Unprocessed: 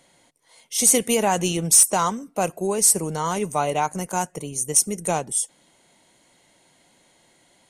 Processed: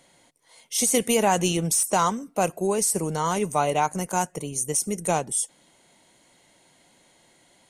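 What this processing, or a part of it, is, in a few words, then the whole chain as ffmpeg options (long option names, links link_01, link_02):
de-esser from a sidechain: -filter_complex "[0:a]asplit=2[link_01][link_02];[link_02]highpass=6200,apad=whole_len=339251[link_03];[link_01][link_03]sidechaincompress=threshold=-19dB:ratio=8:attack=1.2:release=49"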